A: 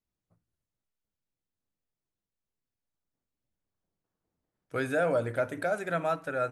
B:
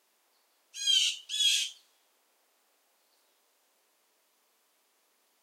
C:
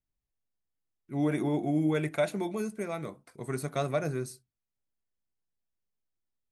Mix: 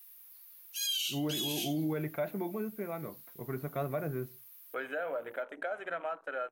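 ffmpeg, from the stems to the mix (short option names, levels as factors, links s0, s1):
-filter_complex "[0:a]highpass=480,afwtdn=0.00708,acompressor=threshold=0.0282:ratio=6,volume=0.841,asplit=2[s0][s1];[1:a]highpass=1500,aexciter=amount=10.3:drive=7.2:freq=11000,alimiter=level_in=1.06:limit=0.0631:level=0:latency=1:release=266,volume=0.944,volume=1.33[s2];[2:a]lowpass=2000,acontrast=70,volume=0.316[s3];[s1]apad=whole_len=239217[s4];[s2][s4]sidechaincompress=threshold=0.00316:ratio=8:attack=36:release=789[s5];[s0][s5][s3]amix=inputs=3:normalize=0,alimiter=level_in=1.12:limit=0.0631:level=0:latency=1:release=28,volume=0.891"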